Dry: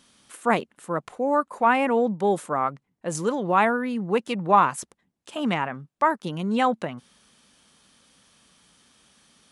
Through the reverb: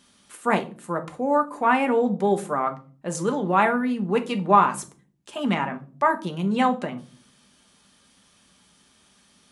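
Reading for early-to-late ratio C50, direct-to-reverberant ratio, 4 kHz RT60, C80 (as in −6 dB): 15.5 dB, 5.0 dB, can't be measured, 22.0 dB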